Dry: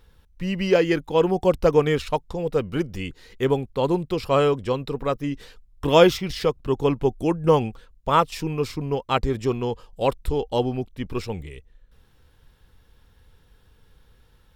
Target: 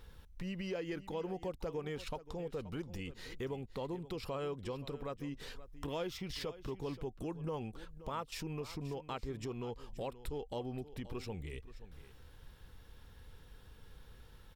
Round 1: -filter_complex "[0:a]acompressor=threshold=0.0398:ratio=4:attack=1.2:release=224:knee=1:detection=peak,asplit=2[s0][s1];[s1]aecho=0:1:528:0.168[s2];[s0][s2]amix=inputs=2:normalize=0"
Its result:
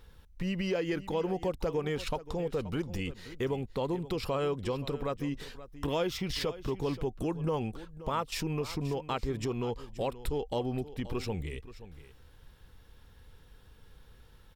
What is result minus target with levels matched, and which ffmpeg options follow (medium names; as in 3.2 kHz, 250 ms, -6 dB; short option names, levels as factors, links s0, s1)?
compression: peak gain reduction -8.5 dB
-filter_complex "[0:a]acompressor=threshold=0.0112:ratio=4:attack=1.2:release=224:knee=1:detection=peak,asplit=2[s0][s1];[s1]aecho=0:1:528:0.168[s2];[s0][s2]amix=inputs=2:normalize=0"